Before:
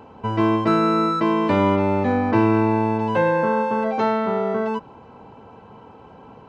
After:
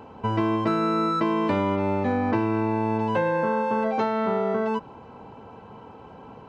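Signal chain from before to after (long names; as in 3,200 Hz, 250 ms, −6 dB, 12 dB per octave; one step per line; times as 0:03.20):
downward compressor, threshold −20 dBFS, peak gain reduction 8 dB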